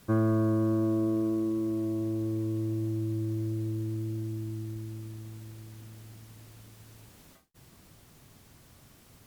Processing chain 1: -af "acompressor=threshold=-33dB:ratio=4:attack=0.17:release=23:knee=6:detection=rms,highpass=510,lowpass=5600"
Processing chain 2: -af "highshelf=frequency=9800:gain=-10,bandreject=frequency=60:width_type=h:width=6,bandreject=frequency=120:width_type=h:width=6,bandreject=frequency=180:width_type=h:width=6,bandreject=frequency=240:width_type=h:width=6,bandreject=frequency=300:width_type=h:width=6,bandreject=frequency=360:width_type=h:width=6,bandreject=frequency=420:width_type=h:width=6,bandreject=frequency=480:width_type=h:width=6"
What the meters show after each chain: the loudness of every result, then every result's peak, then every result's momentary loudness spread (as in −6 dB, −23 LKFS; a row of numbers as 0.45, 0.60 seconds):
−47.5, −31.0 LKFS; −34.5, −17.0 dBFS; 18, 20 LU